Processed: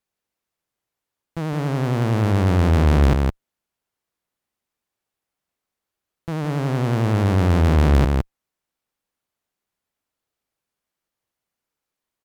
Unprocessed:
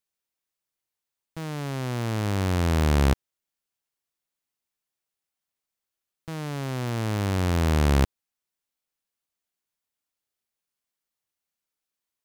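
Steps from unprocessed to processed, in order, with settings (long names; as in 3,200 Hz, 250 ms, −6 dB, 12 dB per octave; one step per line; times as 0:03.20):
high-shelf EQ 2,200 Hz −9.5 dB
single-tap delay 164 ms −6.5 dB
harmonic generator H 5 −19 dB, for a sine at −11.5 dBFS
pitch vibrato 11 Hz 56 cents
level +4.5 dB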